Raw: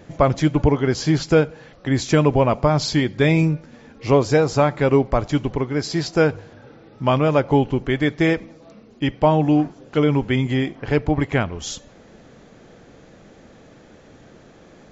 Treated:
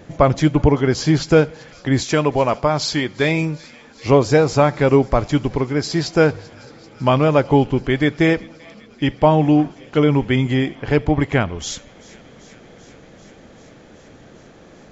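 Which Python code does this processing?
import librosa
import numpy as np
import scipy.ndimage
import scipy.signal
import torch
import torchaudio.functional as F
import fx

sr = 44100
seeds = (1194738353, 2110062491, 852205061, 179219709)

y = fx.low_shelf(x, sr, hz=310.0, db=-9.0, at=(2.03, 4.06))
y = fx.echo_wet_highpass(y, sr, ms=388, feedback_pct=78, hz=2200.0, wet_db=-20.5)
y = y * 10.0 ** (2.5 / 20.0)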